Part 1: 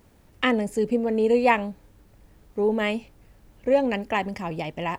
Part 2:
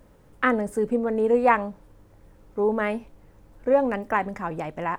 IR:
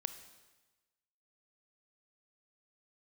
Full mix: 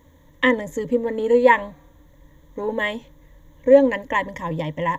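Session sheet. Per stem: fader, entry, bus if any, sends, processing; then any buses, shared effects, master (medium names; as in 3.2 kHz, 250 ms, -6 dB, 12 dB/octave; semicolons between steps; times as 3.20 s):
+1.0 dB, 0.00 s, no send, rippled EQ curve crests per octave 1.1, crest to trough 16 dB
-8.0 dB, 0.00 s, send -6.5 dB, local Wiener filter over 41 samples; high-pass 730 Hz; level held to a coarse grid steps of 20 dB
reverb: on, RT60 1.2 s, pre-delay 23 ms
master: treble shelf 4.7 kHz -5.5 dB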